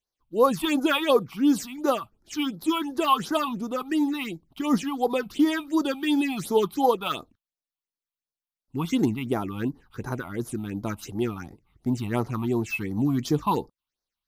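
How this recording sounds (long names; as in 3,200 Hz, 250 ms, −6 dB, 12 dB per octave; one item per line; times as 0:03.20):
phaser sweep stages 6, 2.8 Hz, lowest notch 440–2,800 Hz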